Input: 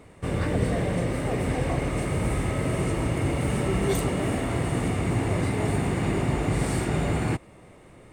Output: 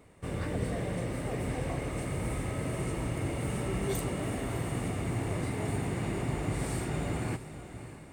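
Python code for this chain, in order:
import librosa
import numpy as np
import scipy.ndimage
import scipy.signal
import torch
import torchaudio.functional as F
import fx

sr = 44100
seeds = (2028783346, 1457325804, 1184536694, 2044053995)

p1 = fx.high_shelf(x, sr, hz=9400.0, db=6.5)
p2 = p1 + fx.echo_diffused(p1, sr, ms=612, feedback_pct=42, wet_db=-12, dry=0)
y = p2 * 10.0 ** (-8.0 / 20.0)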